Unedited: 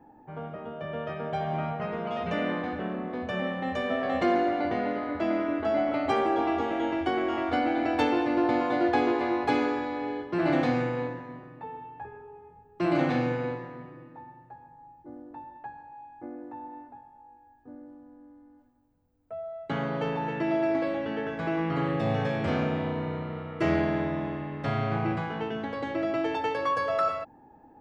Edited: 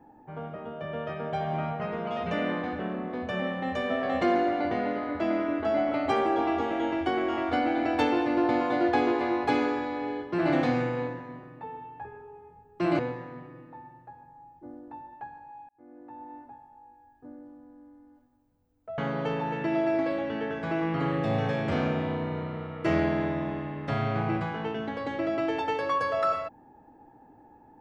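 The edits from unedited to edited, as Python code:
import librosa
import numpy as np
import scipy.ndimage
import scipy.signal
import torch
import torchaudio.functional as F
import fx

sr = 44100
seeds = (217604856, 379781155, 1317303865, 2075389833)

y = fx.edit(x, sr, fx.cut(start_s=12.99, length_s=0.43),
    fx.fade_in_span(start_s=16.12, length_s=0.7),
    fx.cut(start_s=19.41, length_s=0.33), tone=tone)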